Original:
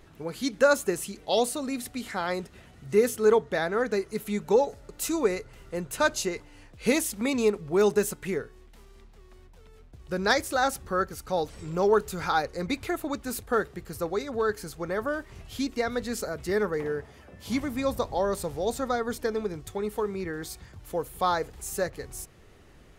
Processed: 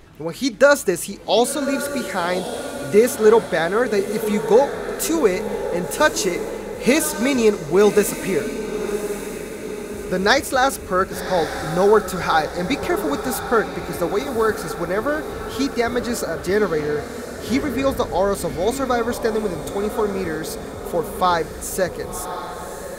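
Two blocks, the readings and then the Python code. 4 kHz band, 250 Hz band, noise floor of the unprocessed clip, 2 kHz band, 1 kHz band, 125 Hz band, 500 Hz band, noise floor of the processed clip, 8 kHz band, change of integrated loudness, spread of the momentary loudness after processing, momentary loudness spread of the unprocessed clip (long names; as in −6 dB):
+8.0 dB, +8.0 dB, −53 dBFS, +8.0 dB, +8.0 dB, +8.0 dB, +8.0 dB, −32 dBFS, +8.0 dB, +7.5 dB, 11 LU, 11 LU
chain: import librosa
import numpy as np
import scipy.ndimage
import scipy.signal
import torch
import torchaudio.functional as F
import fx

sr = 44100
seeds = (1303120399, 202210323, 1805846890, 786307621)

y = fx.echo_diffused(x, sr, ms=1116, feedback_pct=56, wet_db=-9.5)
y = y * librosa.db_to_amplitude(7.5)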